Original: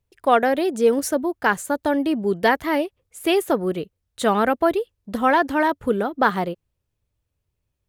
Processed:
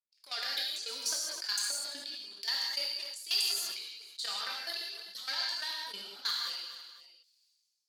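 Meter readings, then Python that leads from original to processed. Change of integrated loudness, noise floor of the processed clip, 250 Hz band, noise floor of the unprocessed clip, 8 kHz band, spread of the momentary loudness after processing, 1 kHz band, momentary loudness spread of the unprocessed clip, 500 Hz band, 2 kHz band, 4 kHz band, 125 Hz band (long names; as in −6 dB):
−12.5 dB, −77 dBFS, below −35 dB, −78 dBFS, −0.5 dB, 10 LU, −25.5 dB, 9 LU, −32.5 dB, −15.5 dB, +4.0 dB, below −35 dB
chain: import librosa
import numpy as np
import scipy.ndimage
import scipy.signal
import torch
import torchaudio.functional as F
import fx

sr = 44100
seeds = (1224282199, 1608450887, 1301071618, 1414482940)

y = fx.dereverb_blind(x, sr, rt60_s=1.9)
y = fx.tilt_eq(y, sr, slope=4.0)
y = fx.leveller(y, sr, passes=3)
y = fx.transient(y, sr, attack_db=-10, sustain_db=10)
y = fx.level_steps(y, sr, step_db=13)
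y = fx.transient(y, sr, attack_db=7, sustain_db=-1)
y = fx.bandpass_q(y, sr, hz=4600.0, q=9.6)
y = 10.0 ** (-20.5 / 20.0) * np.tanh(y / 10.0 ** (-20.5 / 20.0))
y = fx.echo_feedback(y, sr, ms=253, feedback_pct=22, wet_db=-19)
y = fx.rev_gated(y, sr, seeds[0], gate_ms=210, shape='flat', drr_db=-2.0)
y = fx.sustainer(y, sr, db_per_s=35.0)
y = y * 10.0 ** (-3.0 / 20.0)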